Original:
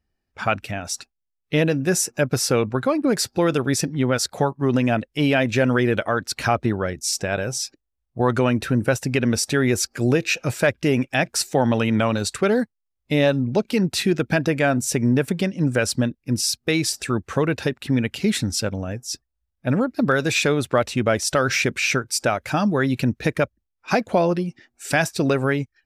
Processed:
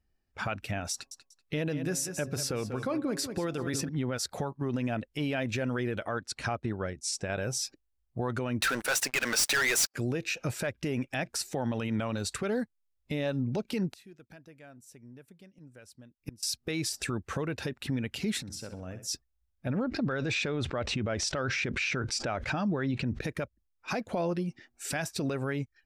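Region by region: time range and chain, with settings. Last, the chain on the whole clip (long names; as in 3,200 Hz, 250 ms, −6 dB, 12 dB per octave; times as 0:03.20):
0:00.92–0:03.89: hum removal 137.5 Hz, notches 8 + repeating echo 191 ms, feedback 22%, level −14 dB
0:06.08–0:07.30: Chebyshev low-pass filter 9,500 Hz, order 3 + expander for the loud parts, over −33 dBFS
0:08.62–0:09.94: high-pass filter 1,000 Hz + leveller curve on the samples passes 5
0:13.88–0:16.43: high-shelf EQ 9,300 Hz +8.5 dB + gate with flip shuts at −22 dBFS, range −29 dB
0:18.41–0:19.07: high-pass filter 120 Hz 6 dB per octave + downward compressor 12 to 1, threshold −34 dBFS + flutter between parallel walls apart 11.1 metres, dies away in 0.39 s
0:19.69–0:23.21: high-frequency loss of the air 120 metres + envelope flattener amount 70%
whole clip: low-shelf EQ 61 Hz +6.5 dB; downward compressor 2.5 to 1, threshold −25 dBFS; brickwall limiter −18.5 dBFS; level −3.5 dB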